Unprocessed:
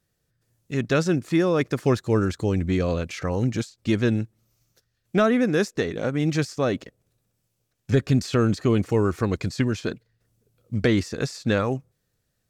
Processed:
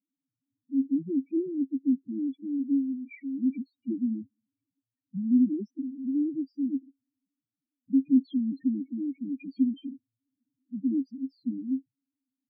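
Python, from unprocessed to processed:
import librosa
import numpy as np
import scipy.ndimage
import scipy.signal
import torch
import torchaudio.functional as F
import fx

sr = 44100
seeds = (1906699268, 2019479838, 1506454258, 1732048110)

y = fx.vowel_filter(x, sr, vowel='i')
y = fx.spec_topn(y, sr, count=2)
y = F.gain(torch.from_numpy(y), 6.0).numpy()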